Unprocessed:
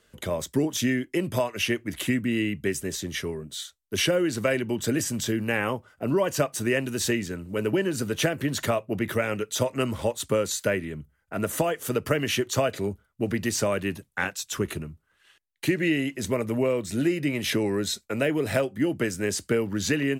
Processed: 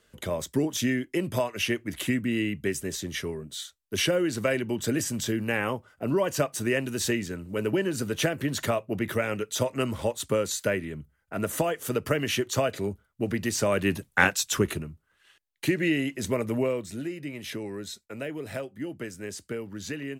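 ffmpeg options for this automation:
-af "volume=7.5dB,afade=t=in:st=13.59:d=0.65:silence=0.354813,afade=t=out:st=14.24:d=0.6:silence=0.375837,afade=t=out:st=16.56:d=0.47:silence=0.354813"

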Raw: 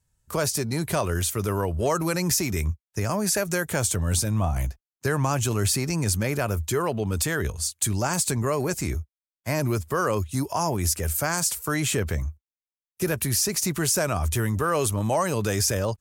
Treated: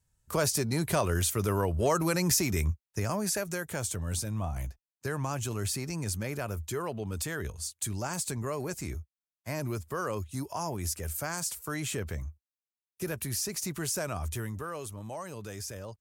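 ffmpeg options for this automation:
-af "volume=-2.5dB,afade=t=out:st=2.64:d=0.94:silence=0.473151,afade=t=out:st=14.23:d=0.59:silence=0.446684"

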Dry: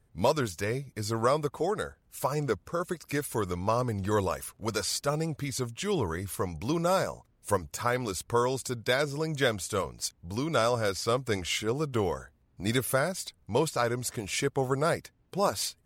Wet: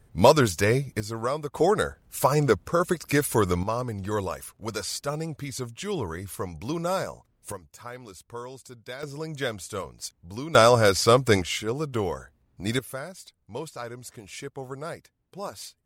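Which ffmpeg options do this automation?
-af "asetnsamples=n=441:p=0,asendcmd='1 volume volume -2.5dB;1.55 volume volume 8dB;3.63 volume volume -1dB;7.52 volume volume -11.5dB;9.03 volume volume -3dB;10.55 volume volume 9.5dB;11.42 volume volume 1dB;12.79 volume volume -8.5dB',volume=9dB"

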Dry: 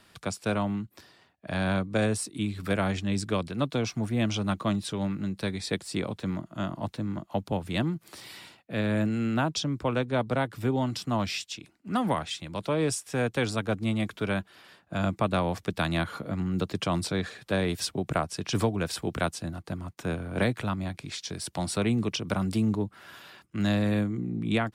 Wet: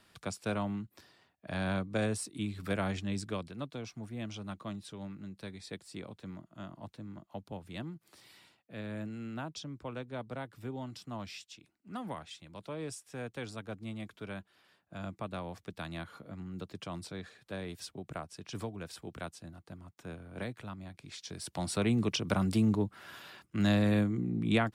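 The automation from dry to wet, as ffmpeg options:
-af "volume=6dB,afade=t=out:st=3:d=0.71:silence=0.421697,afade=t=in:st=20.91:d=1.24:silence=0.251189"

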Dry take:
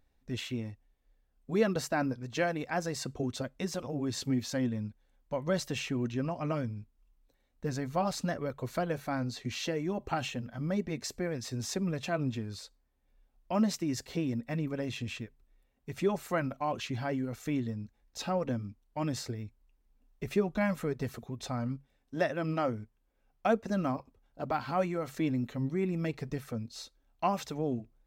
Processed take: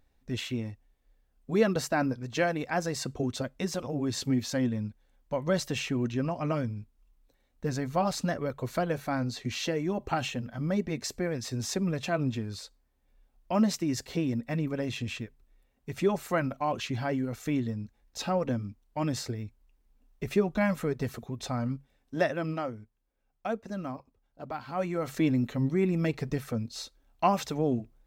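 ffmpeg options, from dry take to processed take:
-af "volume=13dB,afade=t=out:st=22.29:d=0.42:silence=0.398107,afade=t=in:st=24.7:d=0.41:silence=0.316228"

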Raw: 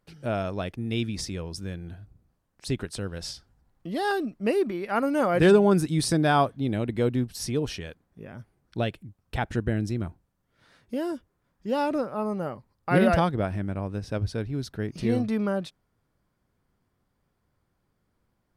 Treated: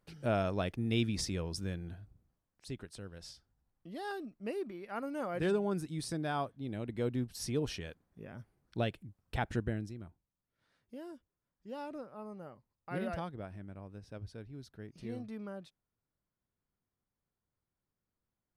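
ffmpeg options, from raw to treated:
-af "volume=5dB,afade=t=out:st=1.62:d=1.05:silence=0.281838,afade=t=in:st=6.59:d=1.09:silence=0.398107,afade=t=out:st=9.54:d=0.4:silence=0.281838"

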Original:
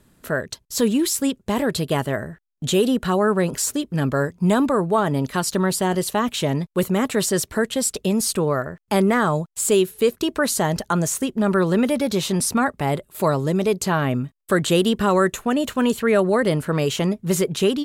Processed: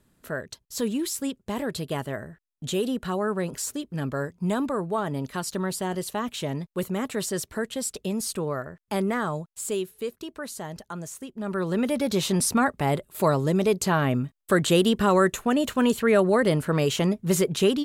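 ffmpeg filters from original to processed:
-af "volume=5dB,afade=t=out:st=9.15:d=1.14:silence=0.446684,afade=t=in:st=11.33:d=0.91:silence=0.223872"

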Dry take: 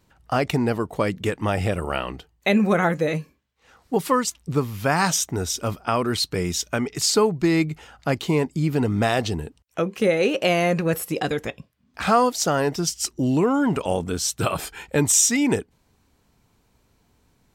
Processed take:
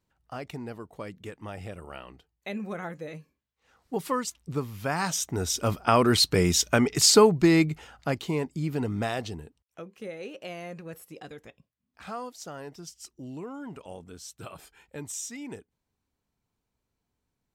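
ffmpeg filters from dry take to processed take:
-af "volume=2.5dB,afade=t=in:st=3.17:d=0.88:silence=0.398107,afade=t=in:st=5.11:d=0.94:silence=0.298538,afade=t=out:st=7.08:d=1.18:silence=0.316228,afade=t=out:st=8.91:d=0.94:silence=0.266073"

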